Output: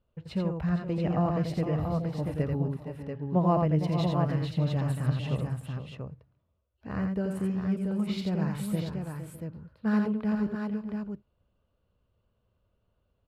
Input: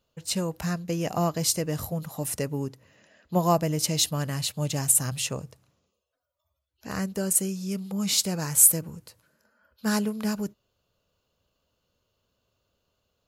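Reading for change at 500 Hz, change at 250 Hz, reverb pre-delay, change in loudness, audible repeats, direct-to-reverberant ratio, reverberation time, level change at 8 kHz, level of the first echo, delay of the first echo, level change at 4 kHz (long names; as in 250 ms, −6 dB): −1.0 dB, +2.0 dB, no reverb audible, −4.5 dB, 5, no reverb audible, no reverb audible, −30.5 dB, −4.5 dB, 85 ms, −14.0 dB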